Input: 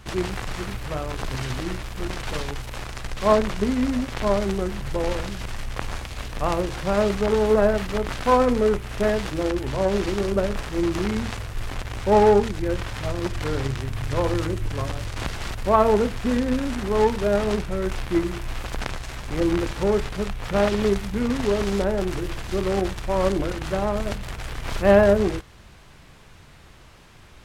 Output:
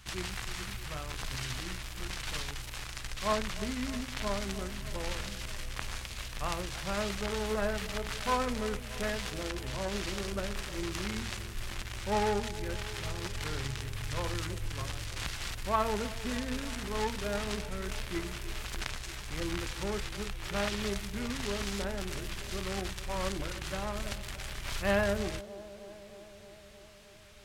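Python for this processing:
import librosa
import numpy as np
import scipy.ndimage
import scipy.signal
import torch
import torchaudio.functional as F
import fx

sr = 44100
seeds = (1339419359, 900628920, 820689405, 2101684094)

y = fx.tone_stack(x, sr, knobs='5-5-5')
y = fx.echo_wet_bandpass(y, sr, ms=311, feedback_pct=73, hz=410.0, wet_db=-14.0)
y = F.gain(torch.from_numpy(y), 4.5).numpy()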